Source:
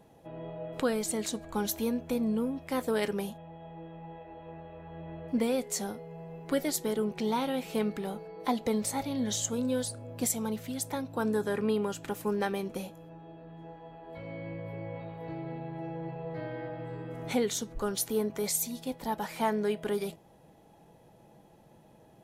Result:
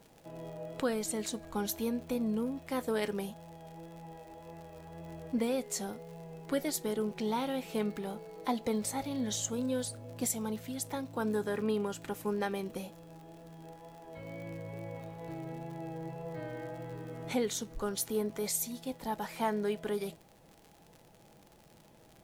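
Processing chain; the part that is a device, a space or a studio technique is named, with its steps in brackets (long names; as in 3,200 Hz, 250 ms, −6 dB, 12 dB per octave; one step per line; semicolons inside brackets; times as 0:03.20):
vinyl LP (tape wow and flutter 19 cents; surface crackle 80 per second −41 dBFS; pink noise bed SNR 32 dB)
level −3 dB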